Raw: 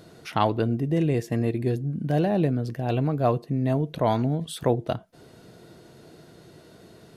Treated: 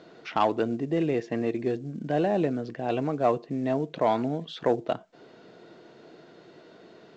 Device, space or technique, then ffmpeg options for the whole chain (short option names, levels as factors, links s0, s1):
telephone: -af "highpass=260,lowpass=3600,asoftclip=type=tanh:threshold=0.251,volume=1.12" -ar 16000 -c:a pcm_mulaw